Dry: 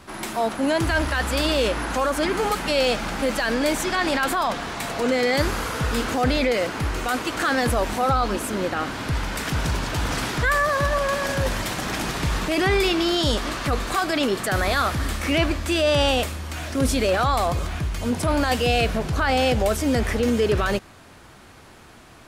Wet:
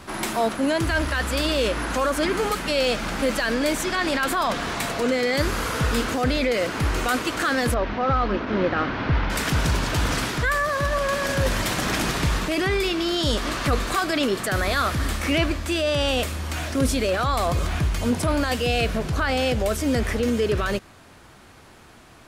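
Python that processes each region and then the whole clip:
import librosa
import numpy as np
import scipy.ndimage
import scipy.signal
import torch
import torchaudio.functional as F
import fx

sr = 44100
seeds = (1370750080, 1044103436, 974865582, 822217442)

y = fx.chain(x, sr, fx.cvsd(bps=32000),
    fx.lowpass(hz=2700.0, slope=12), at=(7.74, 9.3))
y = fx.dynamic_eq(y, sr, hz=820.0, q=3.7, threshold_db=-37.0, ratio=4.0, max_db=-5)
y = fx.rider(y, sr, range_db=4, speed_s=0.5)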